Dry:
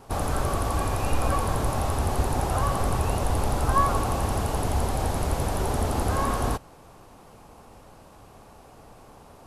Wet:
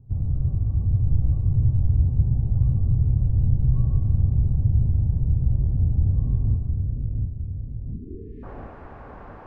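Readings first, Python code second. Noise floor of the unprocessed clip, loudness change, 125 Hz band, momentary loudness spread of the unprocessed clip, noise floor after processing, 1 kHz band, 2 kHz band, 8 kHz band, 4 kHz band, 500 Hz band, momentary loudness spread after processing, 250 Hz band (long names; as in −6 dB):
−50 dBFS, +3.5 dB, +8.5 dB, 3 LU, −41 dBFS, below −20 dB, below −20 dB, below −40 dB, below −35 dB, below −15 dB, 17 LU, −1.0 dB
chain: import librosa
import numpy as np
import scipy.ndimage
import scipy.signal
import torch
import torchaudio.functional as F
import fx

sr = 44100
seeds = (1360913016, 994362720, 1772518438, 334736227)

y = fx.echo_split(x, sr, split_hz=640.0, low_ms=708, high_ms=141, feedback_pct=52, wet_db=-4.0)
y = fx.filter_sweep_lowpass(y, sr, from_hz=120.0, to_hz=1700.0, start_s=7.85, end_s=8.49, q=2.4)
y = fx.spec_erase(y, sr, start_s=7.92, length_s=0.52, low_hz=470.0, high_hz=1700.0)
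y = y * 10.0 ** (2.0 / 20.0)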